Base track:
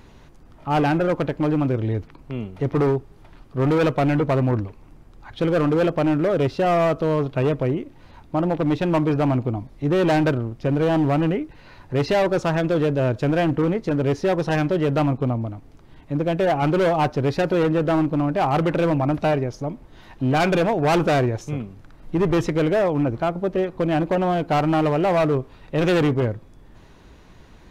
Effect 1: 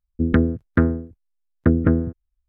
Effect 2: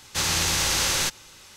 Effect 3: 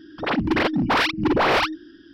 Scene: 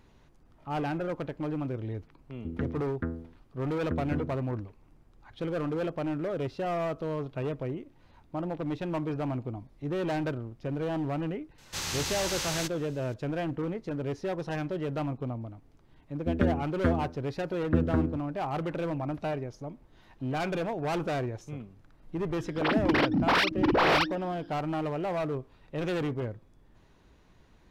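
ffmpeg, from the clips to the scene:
-filter_complex "[1:a]asplit=2[a][b];[0:a]volume=-12dB[c];[2:a]equalizer=f=10k:t=o:w=0.59:g=-3.5[d];[a]atrim=end=2.48,asetpts=PTS-STARTPTS,volume=-16.5dB,afade=t=in:d=0.004:c=hsin,afade=t=out:st=2.476:d=0.004:c=hsin,adelay=2250[e];[d]atrim=end=1.56,asetpts=PTS-STARTPTS,volume=-9.5dB,afade=t=in:d=0.004:c=hsin,afade=t=out:st=1.556:d=0.004:c=hsin,adelay=11580[f];[b]atrim=end=2.48,asetpts=PTS-STARTPTS,volume=-9.5dB,afade=t=in:d=0.004:c=hsin,afade=t=out:st=2.476:d=0.004:c=hsin,adelay=16070[g];[3:a]atrim=end=2.13,asetpts=PTS-STARTPTS,volume=-4.5dB,afade=t=in:d=0.004:c=hsin,afade=t=out:st=2.126:d=0.004:c=hsin,adelay=22380[h];[c][e][f][g][h]amix=inputs=5:normalize=0"

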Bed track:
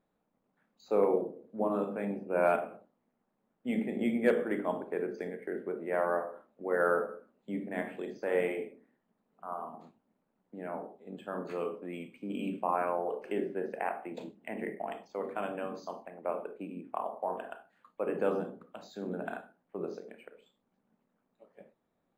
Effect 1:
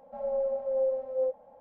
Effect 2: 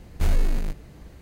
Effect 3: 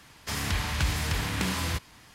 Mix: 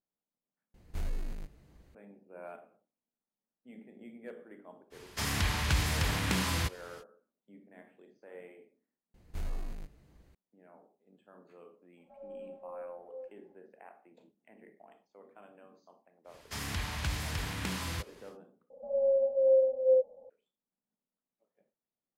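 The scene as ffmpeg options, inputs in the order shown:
-filter_complex "[2:a]asplit=2[a][b];[3:a]asplit=2[c][d];[1:a]asplit=2[e][f];[0:a]volume=-19.5dB[g];[f]lowpass=f=500:t=q:w=4.3[h];[g]asplit=3[i][j][k];[i]atrim=end=0.744[l];[a]atrim=end=1.21,asetpts=PTS-STARTPTS,volume=-14.5dB[m];[j]atrim=start=1.946:end=18.704[n];[h]atrim=end=1.6,asetpts=PTS-STARTPTS,volume=-7.5dB[o];[k]atrim=start=20.296[p];[c]atrim=end=2.14,asetpts=PTS-STARTPTS,volume=-1.5dB,afade=t=in:d=0.05,afade=t=out:st=2.09:d=0.05,adelay=4900[q];[b]atrim=end=1.21,asetpts=PTS-STARTPTS,volume=-16dB,afade=t=in:d=0.004:c=hsin,afade=t=out:st=1.206:d=0.004:c=hsin,adelay=403074S[r];[e]atrim=end=1.6,asetpts=PTS-STARTPTS,volume=-16.5dB,afade=t=in:d=0.004:c=hsin,afade=t=out:st=1.596:d=0.004:c=hsin,adelay=11970[s];[d]atrim=end=2.14,asetpts=PTS-STARTPTS,volume=-7dB,afade=t=in:d=0.1,afade=t=out:st=2.04:d=0.1,adelay=16240[t];[l][m]acrossfade=d=0.004:c1=hsin:c2=hsin[u];[u][n]acrossfade=d=0.004:c1=hsin:c2=hsin[v];[v][o]acrossfade=d=0.004:c1=hsin:c2=hsin[w];[w][p]acrossfade=d=0.004:c1=hsin:c2=hsin[x];[x][q][r][s][t]amix=inputs=5:normalize=0"

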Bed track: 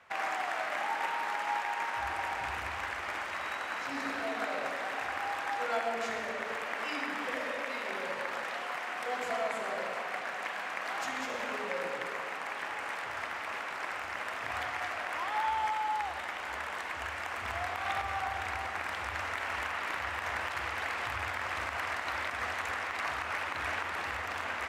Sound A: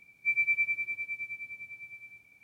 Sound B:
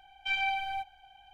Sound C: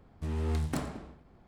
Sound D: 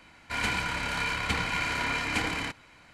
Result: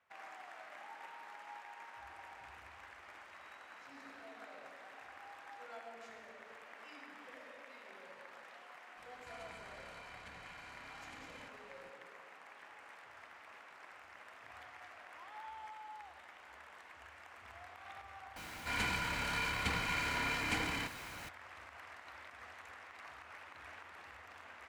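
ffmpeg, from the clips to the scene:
-filter_complex "[4:a]asplit=2[a][b];[0:a]volume=-18dB[c];[a]acompressor=threshold=-42dB:ratio=6:attack=3.2:release=140:knee=1:detection=peak[d];[b]aeval=exprs='val(0)+0.5*0.0141*sgn(val(0))':c=same[e];[d]atrim=end=2.93,asetpts=PTS-STARTPTS,volume=-10.5dB,afade=t=in:d=0.004:c=hsin,afade=t=out:st=2.926:d=0.004:c=hsin,adelay=8970[f];[e]atrim=end=2.93,asetpts=PTS-STARTPTS,volume=-8dB,afade=t=in:d=0.004:c=hsin,afade=t=out:st=2.926:d=0.004:c=hsin,adelay=18360[g];[c][f][g]amix=inputs=3:normalize=0"

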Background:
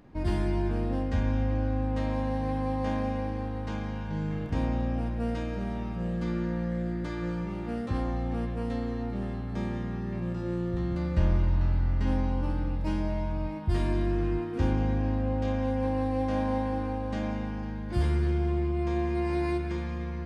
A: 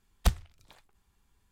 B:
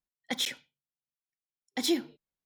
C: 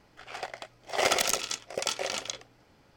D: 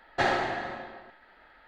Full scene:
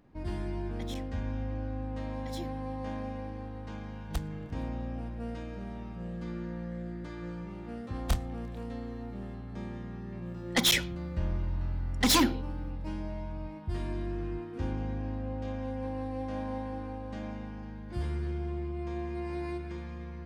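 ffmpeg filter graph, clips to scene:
-filter_complex "[2:a]asplit=2[a][b];[1:a]asplit=2[c][d];[0:a]volume=-7.5dB[e];[d]asplit=2[f][g];[g]adelay=27,volume=-4.5dB[h];[f][h]amix=inputs=2:normalize=0[i];[b]aeval=exprs='0.133*sin(PI/2*2.82*val(0)/0.133)':c=same[j];[a]atrim=end=2.45,asetpts=PTS-STARTPTS,volume=-16dB,afade=t=in:d=0.004:c=hsin,afade=t=out:st=2.446:d=0.004:c=hsin,adelay=490[k];[c]atrim=end=1.51,asetpts=PTS-STARTPTS,volume=-10dB,afade=t=in:d=0.004:c=hsin,afade=t=out:st=1.506:d=0.004:c=hsin,adelay=171549S[l];[i]atrim=end=1.51,asetpts=PTS-STARTPTS,volume=-5dB,afade=t=in:d=0.004:c=hsin,afade=t=out:st=1.506:d=0.004:c=hsin,adelay=7840[m];[j]atrim=end=2.45,asetpts=PTS-STARTPTS,volume=-1.5dB,afade=t=in:d=0.004:c=hsin,afade=t=out:st=2.446:d=0.004:c=hsin,adelay=452466S[n];[e][k][l][m][n]amix=inputs=5:normalize=0"

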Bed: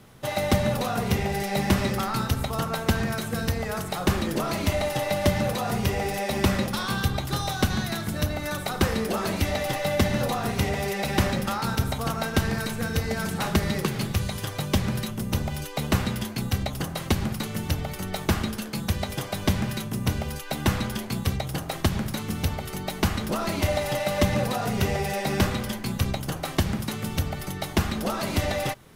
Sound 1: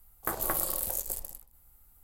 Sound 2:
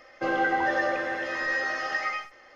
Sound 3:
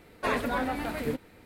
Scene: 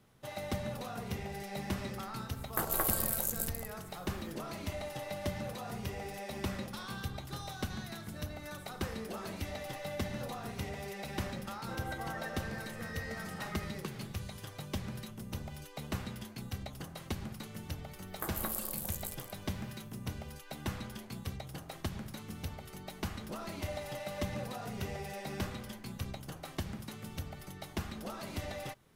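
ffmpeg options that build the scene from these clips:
-filter_complex "[1:a]asplit=2[a][b];[0:a]volume=-14.5dB[c];[a]atrim=end=2.03,asetpts=PTS-STARTPTS,volume=-1.5dB,afade=t=in:d=0.004:c=hsin,afade=t=out:st=2.026:d=0.004:c=hsin,adelay=2300[d];[2:a]atrim=end=2.55,asetpts=PTS-STARTPTS,volume=-17.5dB,afade=t=in:d=0.004:c=hsin,afade=t=out:st=2.546:d=0.004:c=hsin,adelay=11470[e];[b]atrim=end=2.03,asetpts=PTS-STARTPTS,volume=-7.5dB,afade=t=in:d=0.004:c=hsin,afade=t=out:st=2.026:d=0.004:c=hsin,adelay=17950[f];[c][d][e][f]amix=inputs=4:normalize=0"

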